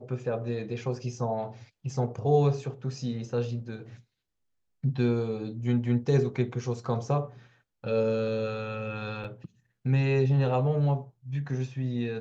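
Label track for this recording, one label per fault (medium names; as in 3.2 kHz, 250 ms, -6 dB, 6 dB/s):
9.240000	9.250000	dropout 5.4 ms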